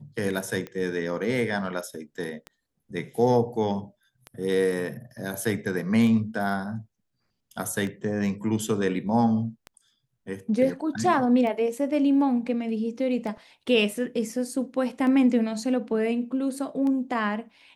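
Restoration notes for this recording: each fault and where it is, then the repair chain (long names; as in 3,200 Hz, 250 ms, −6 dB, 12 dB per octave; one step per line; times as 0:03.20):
scratch tick 33 1/3 rpm −22 dBFS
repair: click removal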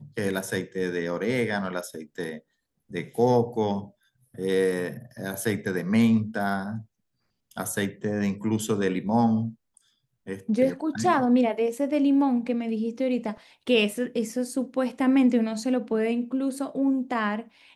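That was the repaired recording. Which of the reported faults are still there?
none of them is left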